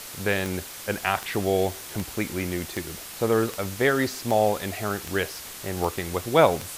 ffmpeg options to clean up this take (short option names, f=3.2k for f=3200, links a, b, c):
-af "adeclick=t=4,afftdn=nr=30:nf=-39"